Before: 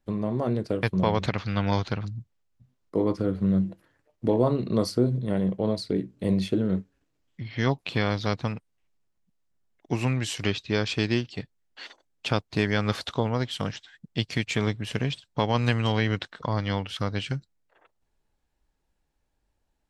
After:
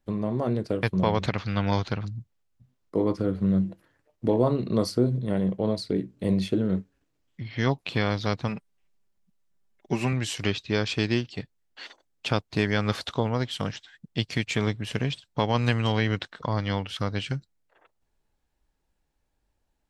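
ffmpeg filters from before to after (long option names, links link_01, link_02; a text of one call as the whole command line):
ffmpeg -i in.wav -filter_complex "[0:a]asettb=1/sr,asplit=3[link_01][link_02][link_03];[link_01]atrim=end=8.484[link_04];[link_02]atrim=start=8.48:end=10.13,asetpts=PTS-STARTPTS,afade=type=in:duration=0.004:curve=qsin,afade=type=out:start_time=1.646:duration=0.004:curve=qsin,aecho=1:1:5.1:0.53,atrim=end_sample=72765[link_05];[link_03]atrim=start=10.126[link_06];[link_04][link_05]acrossfade=duration=0.004:curve1=hsin:curve2=qsin[link_07];[link_07][link_06]acrossfade=duration=0.004:curve1=qsin:curve2=hsin" out.wav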